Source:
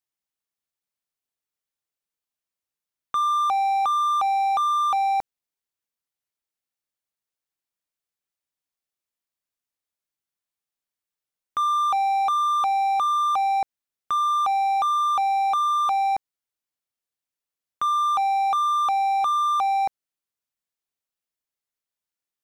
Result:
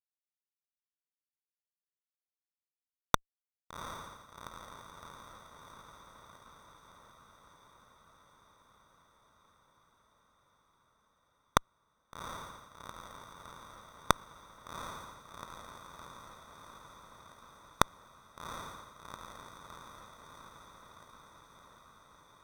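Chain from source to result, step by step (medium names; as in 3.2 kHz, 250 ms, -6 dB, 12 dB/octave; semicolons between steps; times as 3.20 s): octave divider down 2 oct, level -4 dB; Chebyshev band-stop 1.4–6 kHz, order 2; tilt shelf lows +10 dB, about 1.3 kHz; hard clipper -31.5 dBFS, distortion -7 dB; inverted gate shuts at -39 dBFS, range -32 dB; fuzz box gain 52 dB, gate -50 dBFS; on a send: echo that smears into a reverb 762 ms, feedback 72%, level -11 dB; on the sum: trim +2 dB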